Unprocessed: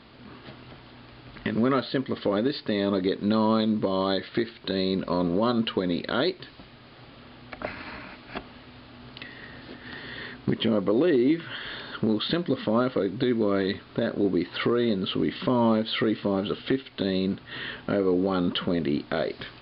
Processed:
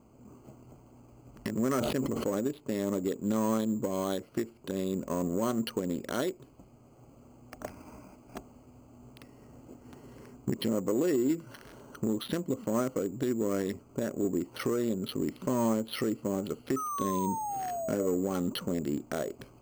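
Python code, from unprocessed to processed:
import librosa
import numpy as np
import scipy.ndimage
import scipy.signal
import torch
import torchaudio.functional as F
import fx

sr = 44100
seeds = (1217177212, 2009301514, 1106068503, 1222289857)

y = fx.wiener(x, sr, points=25)
y = fx.spec_paint(y, sr, seeds[0], shape='fall', start_s=16.76, length_s=1.31, low_hz=570.0, high_hz=1300.0, level_db=-29.0)
y = np.repeat(scipy.signal.resample_poly(y, 1, 6), 6)[:len(y)]
y = fx.sustainer(y, sr, db_per_s=21.0, at=(1.72, 2.25), fade=0.02)
y = y * 10.0 ** (-5.5 / 20.0)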